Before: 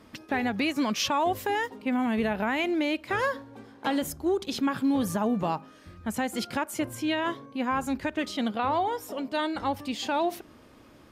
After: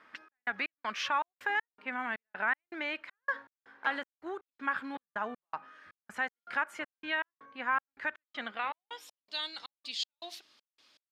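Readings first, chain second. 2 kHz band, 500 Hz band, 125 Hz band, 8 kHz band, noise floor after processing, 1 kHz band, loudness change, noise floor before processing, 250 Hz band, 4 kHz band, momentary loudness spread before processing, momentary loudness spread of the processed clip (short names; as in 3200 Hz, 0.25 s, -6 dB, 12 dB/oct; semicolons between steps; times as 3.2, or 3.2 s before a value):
0.0 dB, -14.5 dB, under -25 dB, under -10 dB, under -85 dBFS, -7.0 dB, -7.0 dB, -54 dBFS, -19.5 dB, -5.0 dB, 6 LU, 12 LU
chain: band-pass sweep 1600 Hz -> 4200 Hz, 8.41–9.26; step gate "xxx..xx..x" 160 bpm -60 dB; gain +5 dB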